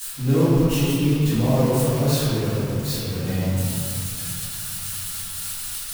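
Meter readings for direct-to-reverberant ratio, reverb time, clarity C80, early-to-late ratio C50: −17.0 dB, 2.7 s, −2.0 dB, −5.0 dB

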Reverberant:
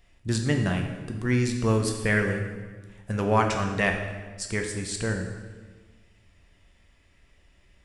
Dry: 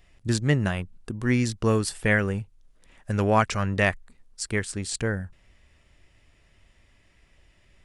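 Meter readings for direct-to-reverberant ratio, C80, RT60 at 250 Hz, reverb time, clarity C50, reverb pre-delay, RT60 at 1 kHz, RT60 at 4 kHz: 3.0 dB, 7.5 dB, 1.7 s, 1.4 s, 6.0 dB, 4 ms, 1.3 s, 1.2 s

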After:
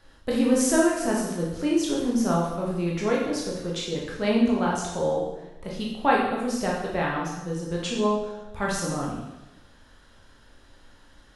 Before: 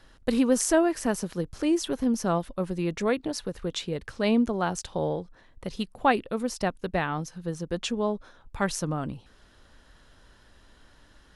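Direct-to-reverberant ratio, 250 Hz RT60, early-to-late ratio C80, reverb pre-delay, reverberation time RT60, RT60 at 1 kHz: −4.0 dB, 1.0 s, 5.0 dB, 7 ms, 1.0 s, 0.95 s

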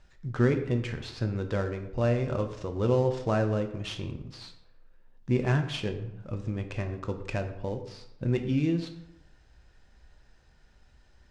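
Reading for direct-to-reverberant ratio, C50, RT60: 5.5 dB, 10.0 dB, 0.85 s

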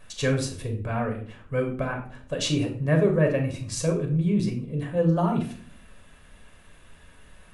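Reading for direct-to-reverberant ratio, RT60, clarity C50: 2.5 dB, 0.55 s, 8.5 dB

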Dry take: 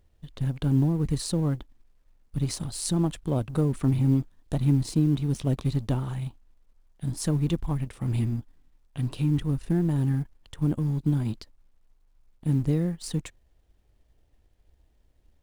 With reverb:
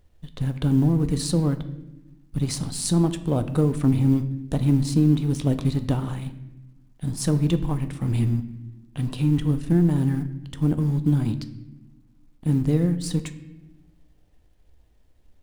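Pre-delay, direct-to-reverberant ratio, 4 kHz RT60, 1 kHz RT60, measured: 4 ms, 9.5 dB, 0.70 s, 0.80 s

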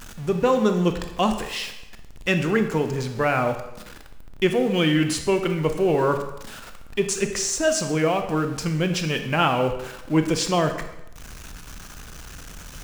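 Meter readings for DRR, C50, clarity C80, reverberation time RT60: 6.5 dB, 8.5 dB, 11.0 dB, 0.85 s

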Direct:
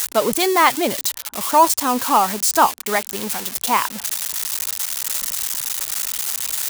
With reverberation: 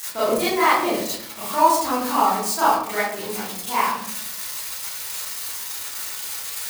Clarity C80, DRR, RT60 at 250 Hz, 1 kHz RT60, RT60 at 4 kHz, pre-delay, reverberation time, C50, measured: 4.5 dB, −12.0 dB, 0.90 s, 0.65 s, 0.40 s, 28 ms, 0.70 s, −0.5 dB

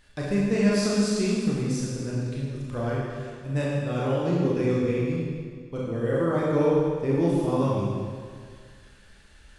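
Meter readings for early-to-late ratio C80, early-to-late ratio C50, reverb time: 0.0 dB, −2.0 dB, 1.9 s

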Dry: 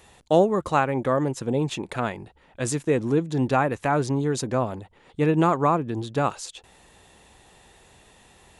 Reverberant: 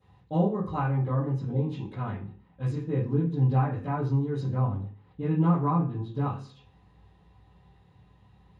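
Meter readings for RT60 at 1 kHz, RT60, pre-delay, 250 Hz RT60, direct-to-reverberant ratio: 0.40 s, 0.45 s, 3 ms, 0.60 s, −12.5 dB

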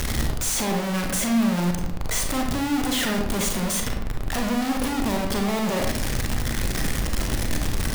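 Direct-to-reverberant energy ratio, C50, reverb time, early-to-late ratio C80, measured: 2.0 dB, 4.5 dB, 0.80 s, 8.0 dB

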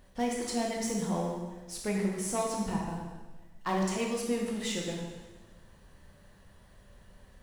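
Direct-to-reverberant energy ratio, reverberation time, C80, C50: −1.5 dB, 1.3 s, 4.0 dB, 2.0 dB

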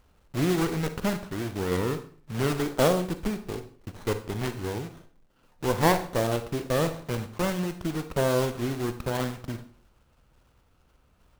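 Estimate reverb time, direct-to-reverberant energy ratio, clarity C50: 0.50 s, 9.5 dB, 11.5 dB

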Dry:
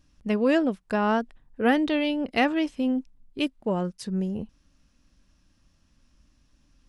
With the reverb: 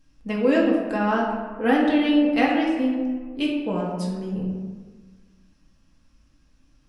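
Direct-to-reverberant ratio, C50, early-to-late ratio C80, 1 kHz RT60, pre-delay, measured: −4.0 dB, 2.0 dB, 4.0 dB, 1.4 s, 4 ms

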